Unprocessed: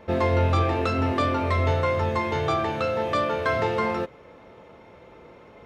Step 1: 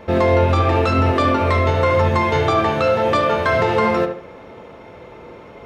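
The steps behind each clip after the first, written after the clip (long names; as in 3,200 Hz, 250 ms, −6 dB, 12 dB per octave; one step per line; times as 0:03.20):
brickwall limiter −16 dBFS, peak gain reduction 5 dB
on a send: tape delay 72 ms, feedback 37%, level −5 dB, low-pass 2,000 Hz
on the sum: level +8 dB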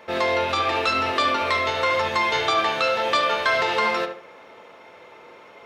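high-pass filter 1,200 Hz 6 dB per octave
dynamic equaliser 4,000 Hz, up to +6 dB, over −41 dBFS, Q 1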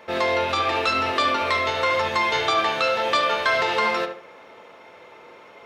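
no processing that can be heard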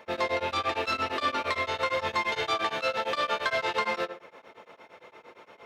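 in parallel at −4 dB: soft clipping −24 dBFS, distortion −9 dB
on the sum: tremolo along a rectified sine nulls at 8.7 Hz
level −6.5 dB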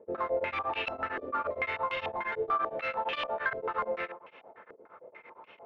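soft clipping −24.5 dBFS, distortion −15 dB
low-pass on a step sequencer 6.8 Hz 440–2,800 Hz
level −6 dB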